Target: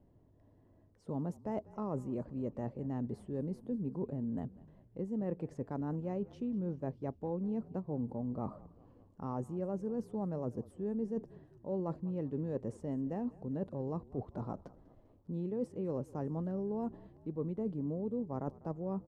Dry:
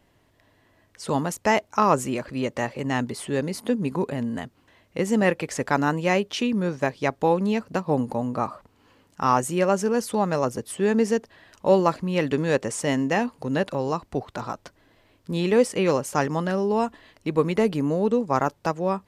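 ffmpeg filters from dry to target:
-filter_complex "[0:a]firequalizer=gain_entry='entry(170,0);entry(1400,-20);entry(2300,-27)':delay=0.05:min_phase=1,areverse,acompressor=threshold=0.0158:ratio=4,areverse,asplit=6[s0][s1][s2][s3][s4][s5];[s1]adelay=197,afreqshift=-38,volume=0.0944[s6];[s2]adelay=394,afreqshift=-76,volume=0.0556[s7];[s3]adelay=591,afreqshift=-114,volume=0.0327[s8];[s4]adelay=788,afreqshift=-152,volume=0.0195[s9];[s5]adelay=985,afreqshift=-190,volume=0.0115[s10];[s0][s6][s7][s8][s9][s10]amix=inputs=6:normalize=0"

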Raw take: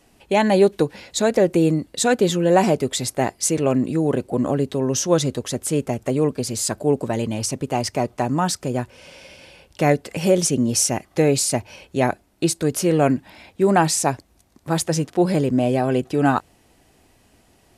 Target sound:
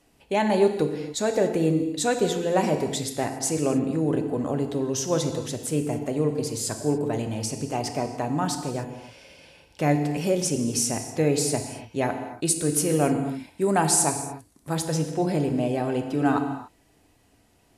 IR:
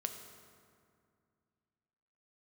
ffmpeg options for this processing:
-filter_complex "[0:a]asettb=1/sr,asplit=3[s0][s1][s2];[s0]atrim=end=12.454[s3];[s1]atrim=start=12.45:end=14.75,asetpts=PTS-STARTPTS,afade=t=in:d=0.004:c=qsin,afade=t=out:st=2.296:d=0.004:c=qsin,equalizer=f=9500:t=o:w=0.81:g=10.5[s4];[s2]atrim=start=14.746[s5];[s3][s4]acrossfade=d=0.004:c1=hsin:c2=qsin[s6];[s6][s5]acrossfade=d=0.004:c1=qsin:c2=hsin[s7];[1:a]atrim=start_sample=2205,afade=t=out:st=0.25:d=0.01,atrim=end_sample=11466,asetrate=29988,aresample=44100[s8];[s7][s8]afir=irnorm=-1:irlink=0,volume=0.447"

